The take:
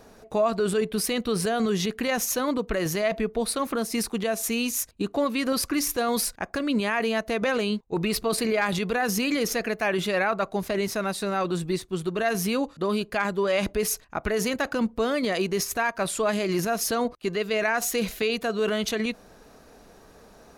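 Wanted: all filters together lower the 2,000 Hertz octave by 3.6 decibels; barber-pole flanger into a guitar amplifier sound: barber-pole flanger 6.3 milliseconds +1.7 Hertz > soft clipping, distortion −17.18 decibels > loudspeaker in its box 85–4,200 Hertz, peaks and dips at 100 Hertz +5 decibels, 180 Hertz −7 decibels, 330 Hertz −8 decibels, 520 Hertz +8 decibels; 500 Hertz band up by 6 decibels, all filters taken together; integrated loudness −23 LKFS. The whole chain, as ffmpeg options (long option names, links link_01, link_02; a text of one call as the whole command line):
ffmpeg -i in.wav -filter_complex "[0:a]equalizer=frequency=500:width_type=o:gain=4,equalizer=frequency=2000:width_type=o:gain=-5,asplit=2[link_01][link_02];[link_02]adelay=6.3,afreqshift=1.7[link_03];[link_01][link_03]amix=inputs=2:normalize=1,asoftclip=threshold=-20.5dB,highpass=85,equalizer=frequency=100:width_type=q:width=4:gain=5,equalizer=frequency=180:width_type=q:width=4:gain=-7,equalizer=frequency=330:width_type=q:width=4:gain=-8,equalizer=frequency=520:width_type=q:width=4:gain=8,lowpass=frequency=4200:width=0.5412,lowpass=frequency=4200:width=1.3066,volume=5.5dB" out.wav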